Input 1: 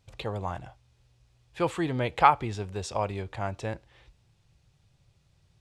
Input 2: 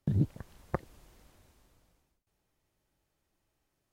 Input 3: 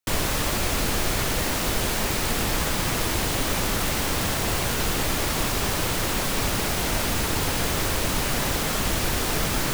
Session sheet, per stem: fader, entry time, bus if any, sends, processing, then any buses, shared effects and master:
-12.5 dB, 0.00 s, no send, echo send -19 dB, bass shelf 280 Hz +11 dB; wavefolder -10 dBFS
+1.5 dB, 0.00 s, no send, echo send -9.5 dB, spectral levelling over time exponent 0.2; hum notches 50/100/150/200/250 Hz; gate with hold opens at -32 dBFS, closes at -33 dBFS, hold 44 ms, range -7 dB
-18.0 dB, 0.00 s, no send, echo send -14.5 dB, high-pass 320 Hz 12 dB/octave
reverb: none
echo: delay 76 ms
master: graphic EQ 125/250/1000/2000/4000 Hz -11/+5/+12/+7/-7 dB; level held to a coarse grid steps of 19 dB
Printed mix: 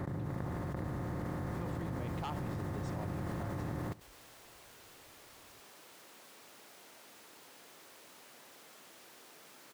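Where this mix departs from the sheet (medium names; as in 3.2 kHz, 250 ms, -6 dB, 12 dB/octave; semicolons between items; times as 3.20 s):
stem 3 -18.0 dB -> -26.5 dB; master: missing graphic EQ 125/250/1000/2000/4000 Hz -11/+5/+12/+7/-7 dB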